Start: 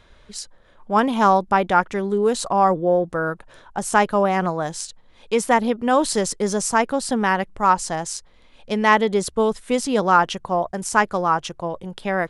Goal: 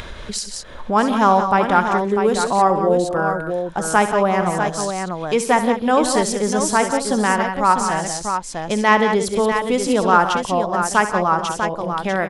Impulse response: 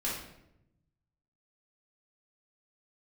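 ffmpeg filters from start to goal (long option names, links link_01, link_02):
-af "aecho=1:1:67|130|158|178|646:0.251|0.106|0.15|0.355|0.422,acompressor=mode=upward:threshold=-19dB:ratio=2.5,volume=1dB"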